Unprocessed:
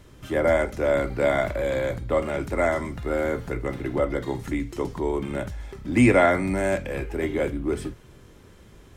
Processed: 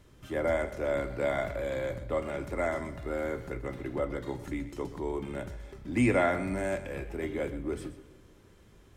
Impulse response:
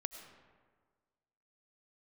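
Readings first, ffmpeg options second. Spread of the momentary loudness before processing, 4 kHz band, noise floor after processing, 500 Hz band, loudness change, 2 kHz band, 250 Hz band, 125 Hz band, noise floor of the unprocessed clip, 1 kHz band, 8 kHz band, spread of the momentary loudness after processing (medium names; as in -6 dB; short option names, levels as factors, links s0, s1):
11 LU, -8.0 dB, -57 dBFS, -8.0 dB, -8.0 dB, -8.0 dB, -8.0 dB, -7.5 dB, -50 dBFS, -8.0 dB, -8.0 dB, 11 LU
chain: -filter_complex "[0:a]asplit=2[s0][s1];[1:a]atrim=start_sample=2205,asetrate=40131,aresample=44100,adelay=127[s2];[s1][s2]afir=irnorm=-1:irlink=0,volume=0.237[s3];[s0][s3]amix=inputs=2:normalize=0,volume=0.398"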